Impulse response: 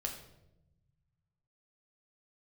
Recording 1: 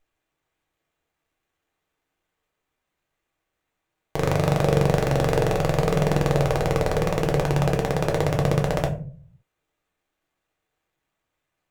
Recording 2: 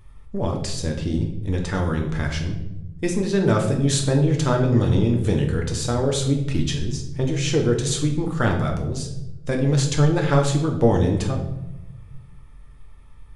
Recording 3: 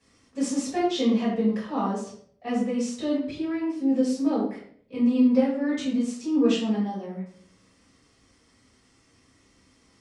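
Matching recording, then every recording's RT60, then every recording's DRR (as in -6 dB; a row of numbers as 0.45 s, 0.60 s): 2; 0.45 s, 0.90 s, 0.60 s; 1.0 dB, 1.5 dB, -10.0 dB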